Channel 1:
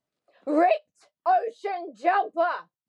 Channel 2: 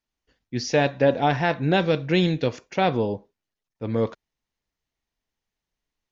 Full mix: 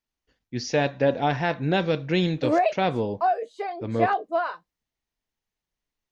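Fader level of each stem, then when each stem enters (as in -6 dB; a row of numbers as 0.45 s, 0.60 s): -1.0 dB, -2.5 dB; 1.95 s, 0.00 s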